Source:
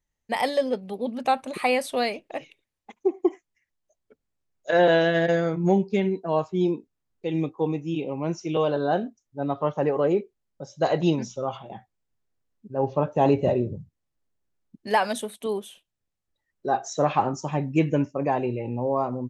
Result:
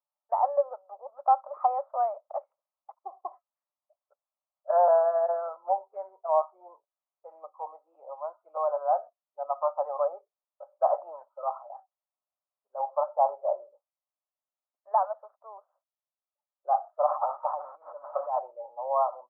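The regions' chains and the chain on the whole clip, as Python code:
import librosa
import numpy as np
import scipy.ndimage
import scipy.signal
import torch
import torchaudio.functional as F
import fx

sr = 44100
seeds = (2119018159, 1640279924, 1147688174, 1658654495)

y = fx.chain(x, sr, fx.zero_step(step_db=-29.5),
    fx.over_compress(threshold_db=-25.0, ratio=-0.5), at=(17.06, 18.39))
y = scipy.signal.sosfilt(scipy.signal.cheby1(4, 1.0, [570.0, 1300.0], 'bandpass', fs=sr, output='sos'), y)
y = fx.dynamic_eq(y, sr, hz=830.0, q=1.6, threshold_db=-34.0, ratio=4.0, max_db=4)
y = fx.rider(y, sr, range_db=3, speed_s=2.0)
y = y * librosa.db_to_amplitude(-1.5)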